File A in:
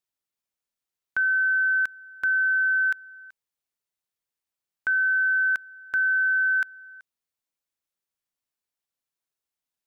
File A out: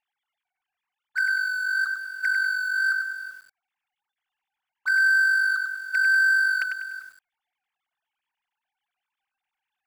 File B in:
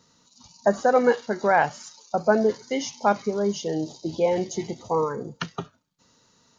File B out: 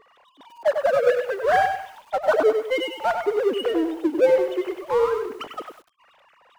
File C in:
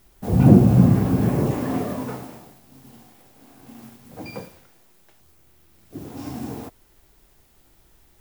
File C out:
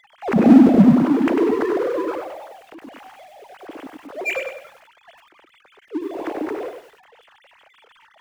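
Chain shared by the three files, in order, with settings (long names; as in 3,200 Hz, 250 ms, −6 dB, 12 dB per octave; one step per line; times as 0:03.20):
three sine waves on the formant tracks
power curve on the samples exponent 0.7
feedback echo at a low word length 98 ms, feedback 35%, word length 8 bits, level −6 dB
level −2 dB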